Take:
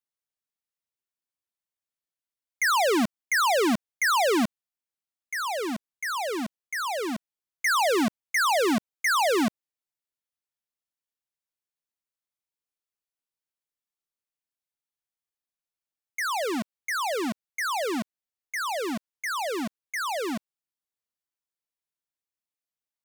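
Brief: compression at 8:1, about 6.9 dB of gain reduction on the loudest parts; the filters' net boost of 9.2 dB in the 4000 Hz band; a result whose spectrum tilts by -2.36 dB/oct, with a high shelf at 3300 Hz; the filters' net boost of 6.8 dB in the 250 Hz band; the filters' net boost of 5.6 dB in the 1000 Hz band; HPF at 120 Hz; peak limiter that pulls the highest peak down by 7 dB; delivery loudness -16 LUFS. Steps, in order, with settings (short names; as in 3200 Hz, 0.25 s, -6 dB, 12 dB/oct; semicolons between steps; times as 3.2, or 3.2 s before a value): HPF 120 Hz; bell 250 Hz +8 dB; bell 1000 Hz +5.5 dB; high shelf 3300 Hz +6.5 dB; bell 4000 Hz +6.5 dB; compressor 8:1, threshold -21 dBFS; gain +11 dB; limiter -9 dBFS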